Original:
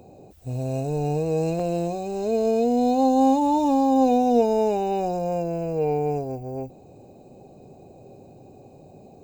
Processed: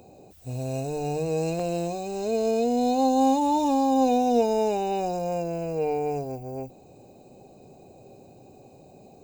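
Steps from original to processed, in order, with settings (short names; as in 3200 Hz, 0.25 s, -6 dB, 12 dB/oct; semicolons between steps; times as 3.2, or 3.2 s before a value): tilt shelf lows -3.5 dB, about 1300 Hz; notches 50/100/150 Hz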